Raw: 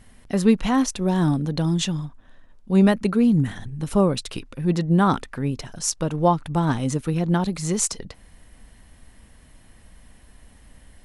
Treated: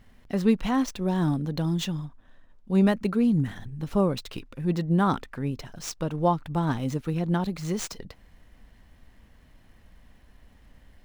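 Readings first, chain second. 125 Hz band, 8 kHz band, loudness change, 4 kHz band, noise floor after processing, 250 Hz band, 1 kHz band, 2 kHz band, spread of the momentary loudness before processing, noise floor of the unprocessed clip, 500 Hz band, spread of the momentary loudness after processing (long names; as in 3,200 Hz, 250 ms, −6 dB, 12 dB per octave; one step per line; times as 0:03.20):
−4.5 dB, −12.0 dB, −4.5 dB, −6.0 dB, −56 dBFS, −4.5 dB, −4.5 dB, −4.5 dB, 9 LU, −51 dBFS, −4.5 dB, 12 LU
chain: running median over 5 samples
level −4.5 dB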